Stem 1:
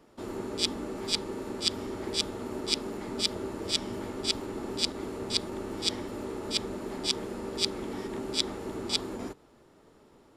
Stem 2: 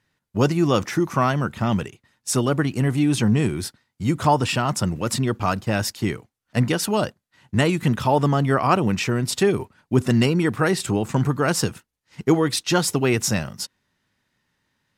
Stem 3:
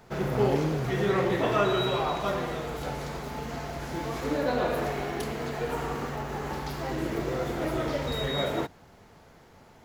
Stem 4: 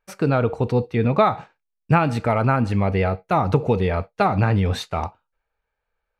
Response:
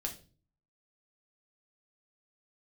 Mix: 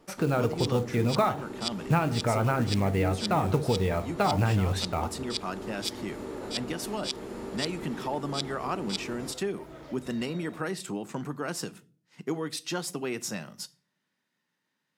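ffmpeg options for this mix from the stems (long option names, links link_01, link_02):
-filter_complex "[0:a]volume=0dB[link_01];[1:a]highpass=frequency=160:width=0.5412,highpass=frequency=160:width=1.3066,volume=-10dB,asplit=2[link_02][link_03];[link_03]volume=-10.5dB[link_04];[2:a]adelay=1950,volume=-16.5dB[link_05];[3:a]acrusher=bits=6:mode=log:mix=0:aa=0.000001,volume=-2dB,asplit=2[link_06][link_07];[link_07]volume=-7dB[link_08];[4:a]atrim=start_sample=2205[link_09];[link_04][link_08]amix=inputs=2:normalize=0[link_10];[link_10][link_09]afir=irnorm=-1:irlink=0[link_11];[link_01][link_02][link_05][link_06][link_11]amix=inputs=5:normalize=0,acompressor=threshold=-36dB:ratio=1.5"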